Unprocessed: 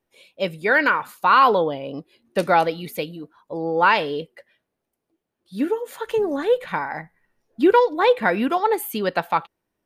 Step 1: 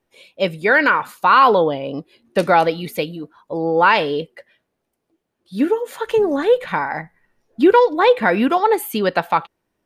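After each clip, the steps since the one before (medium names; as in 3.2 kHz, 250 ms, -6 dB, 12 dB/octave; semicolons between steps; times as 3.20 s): treble shelf 11 kHz -6.5 dB; in parallel at -2 dB: peak limiter -12.5 dBFS, peak gain reduction 8 dB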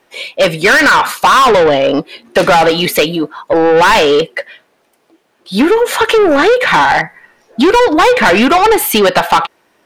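overdrive pedal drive 26 dB, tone 5.3 kHz, clips at -1.5 dBFS; compression 2.5:1, threshold -11 dBFS, peak gain reduction 4.5 dB; trim +3.5 dB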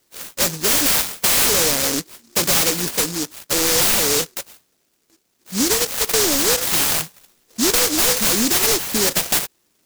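delay time shaken by noise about 5.8 kHz, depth 0.42 ms; trim -9 dB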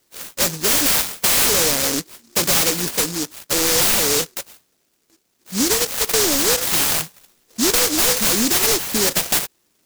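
no audible change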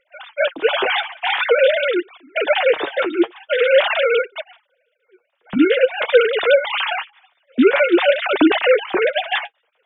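formants replaced by sine waves; flange 0.47 Hz, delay 2.5 ms, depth 6.6 ms, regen +39%; trim +5.5 dB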